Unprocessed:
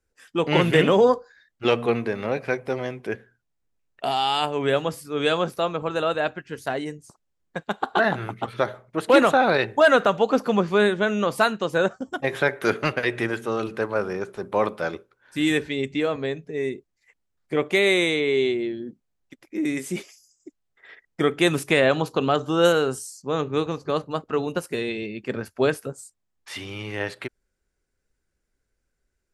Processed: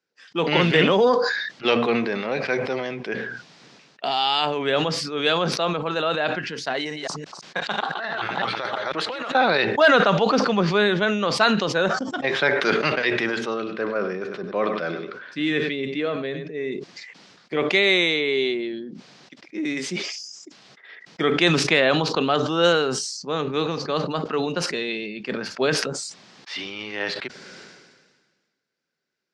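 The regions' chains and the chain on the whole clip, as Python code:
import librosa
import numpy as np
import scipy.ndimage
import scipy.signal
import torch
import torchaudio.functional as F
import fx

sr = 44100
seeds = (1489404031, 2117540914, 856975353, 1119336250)

y = fx.chain(x, sr, fx.reverse_delay(ms=168, wet_db=-3.0),
    fx.peak_eq(hz=210.0, db=-8.5, octaves=2.4),
    fx.over_compress(threshold_db=-28.0, ratio=-1.0), at=(6.74, 9.35))
y = fx.chain(y, sr, fx.lowpass(hz=2200.0, slope=6),
    fx.peak_eq(hz=870.0, db=-14.5, octaves=0.22),
    fx.echo_single(ms=97, db=-14.0), at=(13.54, 16.72))
y = scipy.signal.sosfilt(scipy.signal.ellip(3, 1.0, 60, [160.0, 5000.0], 'bandpass', fs=sr, output='sos'), y)
y = fx.high_shelf(y, sr, hz=2100.0, db=9.0)
y = fx.sustainer(y, sr, db_per_s=38.0)
y = F.gain(torch.from_numpy(y), -1.5).numpy()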